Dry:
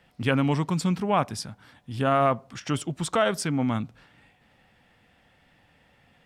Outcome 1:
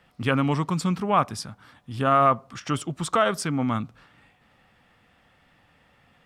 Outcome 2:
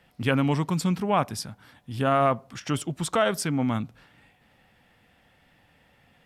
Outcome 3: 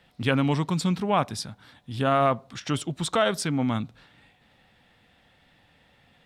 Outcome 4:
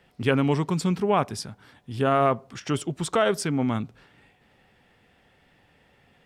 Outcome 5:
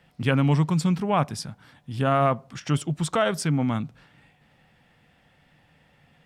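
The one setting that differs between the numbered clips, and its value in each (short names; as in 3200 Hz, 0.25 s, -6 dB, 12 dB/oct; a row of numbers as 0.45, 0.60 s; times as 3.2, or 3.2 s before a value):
bell, frequency: 1200, 12000, 3800, 400, 150 Hz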